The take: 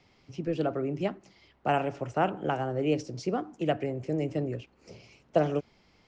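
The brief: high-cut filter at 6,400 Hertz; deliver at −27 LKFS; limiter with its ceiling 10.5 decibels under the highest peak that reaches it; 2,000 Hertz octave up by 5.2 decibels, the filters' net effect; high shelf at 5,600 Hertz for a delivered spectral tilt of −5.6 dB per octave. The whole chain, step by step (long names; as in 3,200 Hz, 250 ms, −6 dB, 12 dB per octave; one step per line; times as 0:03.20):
low-pass filter 6,400 Hz
parametric band 2,000 Hz +6.5 dB
high-shelf EQ 5,600 Hz +7 dB
level +6.5 dB
brickwall limiter −15 dBFS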